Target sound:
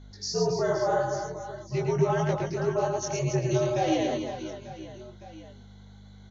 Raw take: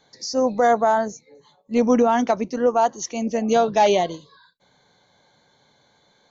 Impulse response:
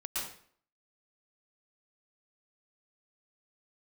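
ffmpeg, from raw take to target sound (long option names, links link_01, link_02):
-af "highpass=210,alimiter=limit=-16dB:level=0:latency=1:release=320,flanger=delay=17:depth=4.9:speed=1.8,afreqshift=-86,aeval=exprs='val(0)+0.00501*(sin(2*PI*50*n/s)+sin(2*PI*2*50*n/s)/2+sin(2*PI*3*50*n/s)/3+sin(2*PI*4*50*n/s)/4+sin(2*PI*5*50*n/s)/5)':channel_layout=same,aecho=1:1:110|275|522.5|893.8|1451:0.631|0.398|0.251|0.158|0.1"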